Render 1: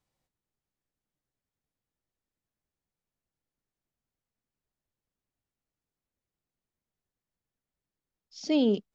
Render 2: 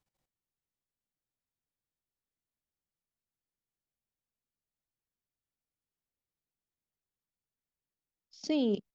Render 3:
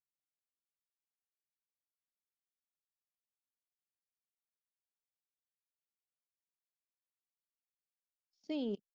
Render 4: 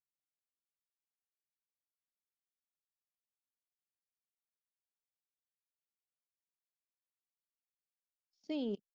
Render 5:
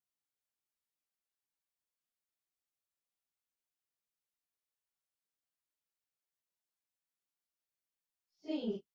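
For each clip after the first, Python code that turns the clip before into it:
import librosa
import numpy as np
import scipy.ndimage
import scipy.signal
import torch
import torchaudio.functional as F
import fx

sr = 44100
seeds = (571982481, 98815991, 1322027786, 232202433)

y1 = fx.level_steps(x, sr, step_db=14)
y2 = fx.upward_expand(y1, sr, threshold_db=-40.0, expansion=2.5)
y2 = y2 * librosa.db_to_amplitude(-7.5)
y3 = y2
y4 = fx.phase_scramble(y3, sr, seeds[0], window_ms=100)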